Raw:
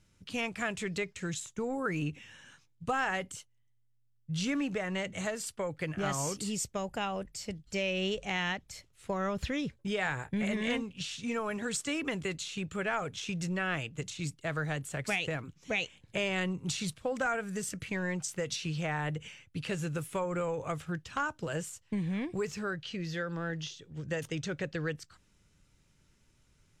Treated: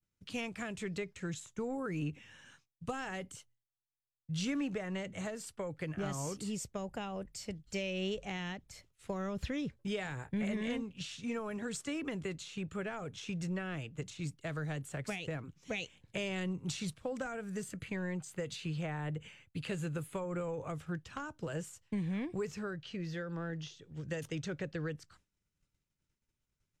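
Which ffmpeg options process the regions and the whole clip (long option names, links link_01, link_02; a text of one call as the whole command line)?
ffmpeg -i in.wav -filter_complex "[0:a]asettb=1/sr,asplit=3[link_01][link_02][link_03];[link_01]atrim=end=17.634[link_04];[link_02]atrim=start=17.63:end=20.41,asetpts=PTS-STARTPTS,afade=type=in:duration=0.004:curve=qsin,afade=type=out:start_time=2.776:duration=0.004:curve=qsin,bandreject=frequency=5600:width=5.1,deesser=0.75[link_05];[link_03]atrim=start=20.406[link_06];[link_04][link_05]acrossfade=duration=0.004:curve1=hsin:curve2=qsin[link_07];[link_07][link_06]acrossfade=duration=0.004:curve1=qsin:curve2=hsin,agate=range=-33dB:threshold=-55dB:ratio=3:detection=peak,acrossover=split=470|3000[link_08][link_09][link_10];[link_09]acompressor=threshold=-39dB:ratio=6[link_11];[link_08][link_11][link_10]amix=inputs=3:normalize=0,adynamicequalizer=threshold=0.00224:dfrequency=2100:dqfactor=0.7:tfrequency=2100:tqfactor=0.7:attack=5:release=100:ratio=0.375:range=3:mode=cutabove:tftype=highshelf,volume=-2.5dB" out.wav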